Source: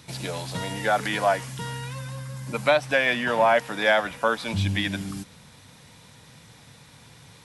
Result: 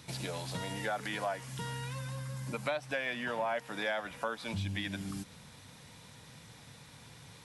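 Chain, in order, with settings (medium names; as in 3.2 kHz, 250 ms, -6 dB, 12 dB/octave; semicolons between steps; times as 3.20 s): compression 2.5:1, threshold -33 dBFS, peak gain reduction 12 dB; trim -3.5 dB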